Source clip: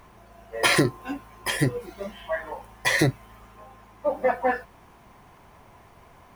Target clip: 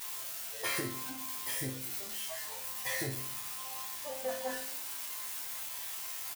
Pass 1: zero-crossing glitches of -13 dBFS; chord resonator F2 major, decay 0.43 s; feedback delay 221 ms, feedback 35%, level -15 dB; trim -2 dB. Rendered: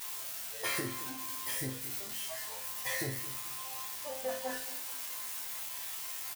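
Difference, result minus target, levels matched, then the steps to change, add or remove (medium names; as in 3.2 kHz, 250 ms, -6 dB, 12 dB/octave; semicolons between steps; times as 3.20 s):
echo 99 ms late
change: feedback delay 122 ms, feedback 35%, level -15 dB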